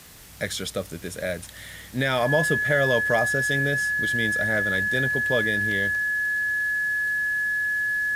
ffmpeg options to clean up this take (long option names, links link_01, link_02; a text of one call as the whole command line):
ffmpeg -i in.wav -af "adeclick=threshold=4,bandreject=frequency=1700:width=30,afwtdn=0.0045" out.wav